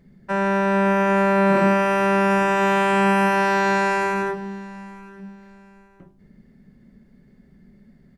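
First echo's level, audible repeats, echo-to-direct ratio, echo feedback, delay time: -21.0 dB, 2, -20.5 dB, 26%, 0.87 s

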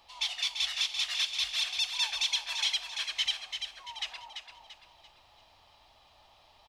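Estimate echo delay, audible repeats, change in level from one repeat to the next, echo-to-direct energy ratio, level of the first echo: 0.34 s, 4, -8.0 dB, -6.5 dB, -7.0 dB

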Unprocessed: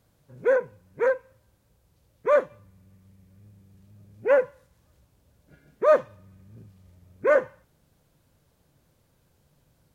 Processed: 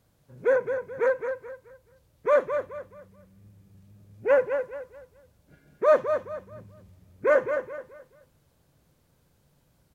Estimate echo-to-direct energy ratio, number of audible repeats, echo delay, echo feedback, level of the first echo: -7.0 dB, 3, 0.214 s, 31%, -7.5 dB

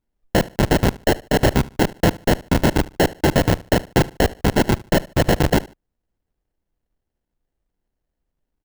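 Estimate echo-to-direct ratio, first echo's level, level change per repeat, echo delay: -20.0 dB, -20.5 dB, -12.0 dB, 74 ms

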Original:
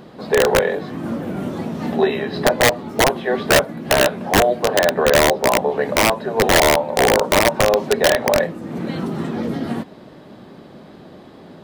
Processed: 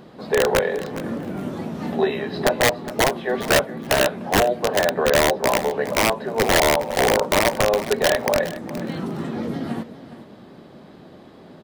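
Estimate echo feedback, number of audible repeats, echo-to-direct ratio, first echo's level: 20%, 2, -14.5 dB, -14.5 dB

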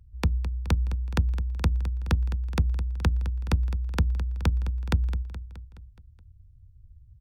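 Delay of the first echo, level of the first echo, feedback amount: 0.211 s, -13.0 dB, 57%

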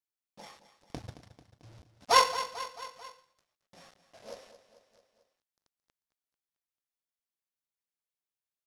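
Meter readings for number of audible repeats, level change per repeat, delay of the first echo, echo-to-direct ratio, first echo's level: 4, -4.5 dB, 0.221 s, -11.0 dB, -13.0 dB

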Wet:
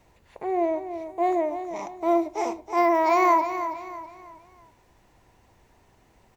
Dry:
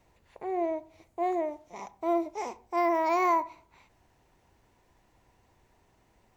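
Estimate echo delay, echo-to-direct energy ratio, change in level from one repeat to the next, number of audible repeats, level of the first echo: 0.324 s, -9.5 dB, -8.5 dB, 3, -10.0 dB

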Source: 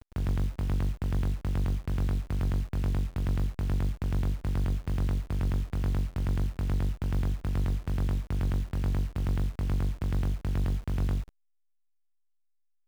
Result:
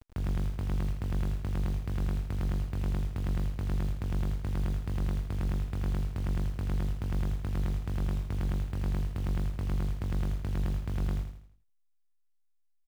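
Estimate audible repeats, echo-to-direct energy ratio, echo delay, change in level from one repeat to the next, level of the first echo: 4, -6.5 dB, 81 ms, -7.5 dB, -7.5 dB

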